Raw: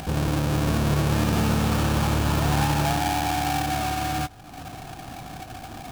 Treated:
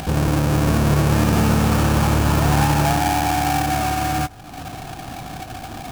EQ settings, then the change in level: dynamic EQ 3600 Hz, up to -4 dB, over -43 dBFS, Q 1.7; +5.5 dB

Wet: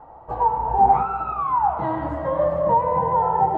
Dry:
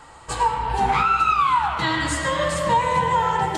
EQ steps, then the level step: synth low-pass 740 Hz, resonance Q 3.4; -2.5 dB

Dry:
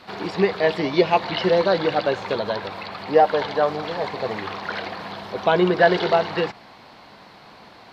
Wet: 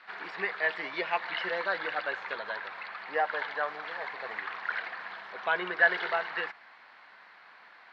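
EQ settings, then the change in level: band-pass 1700 Hz, Q 2.4; 0.0 dB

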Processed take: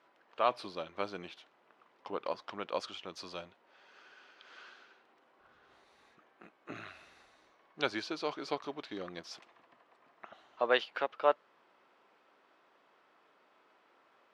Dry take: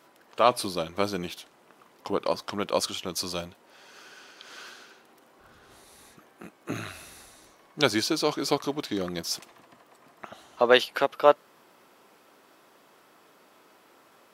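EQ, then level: LPF 3100 Hz 12 dB/oct; low shelf 290 Hz -12 dB; -7.0 dB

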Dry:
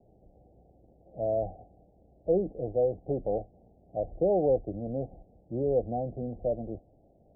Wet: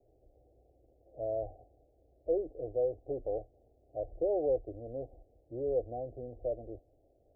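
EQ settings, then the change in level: dynamic EQ 200 Hz, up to -3 dB, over -39 dBFS, Q 1.3; fixed phaser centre 460 Hz, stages 4; -4.0 dB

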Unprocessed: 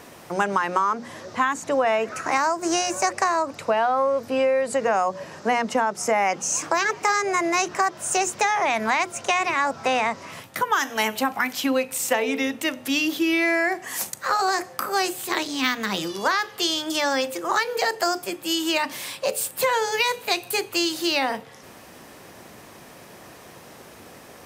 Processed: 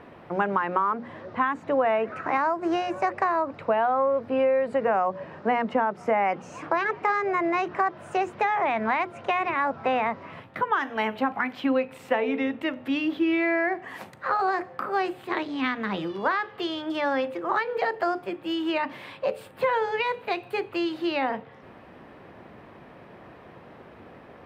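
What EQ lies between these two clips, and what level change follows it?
air absorption 490 m; 0.0 dB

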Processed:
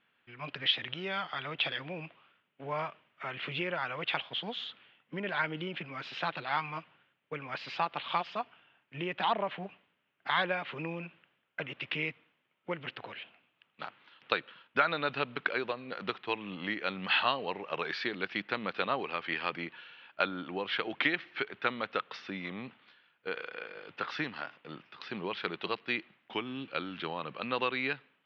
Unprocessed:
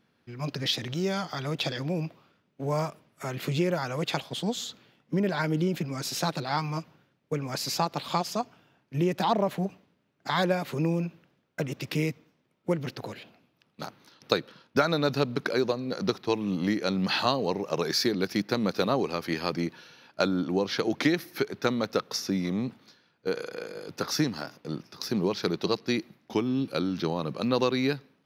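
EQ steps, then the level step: Chebyshev low-pass 3100 Hz, order 4; tilt shelf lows -6.5 dB, about 1100 Hz; low shelf 490 Hz -8 dB; 0.0 dB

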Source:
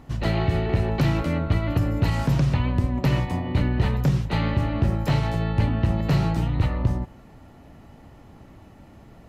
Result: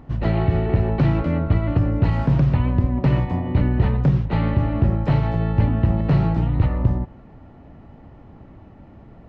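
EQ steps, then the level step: tape spacing loss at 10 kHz 31 dB; +4.0 dB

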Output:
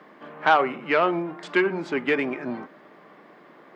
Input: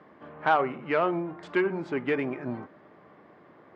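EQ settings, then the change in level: HPF 160 Hz 24 dB/oct; high shelf 2100 Hz +9 dB; +3.0 dB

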